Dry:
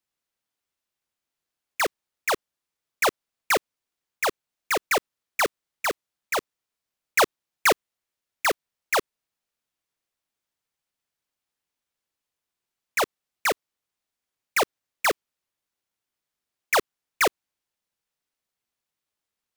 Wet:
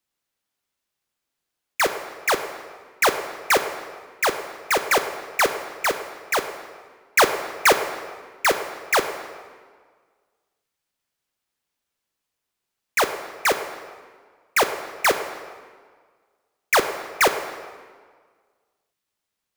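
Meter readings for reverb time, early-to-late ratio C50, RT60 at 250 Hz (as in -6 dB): 1.7 s, 9.0 dB, 1.7 s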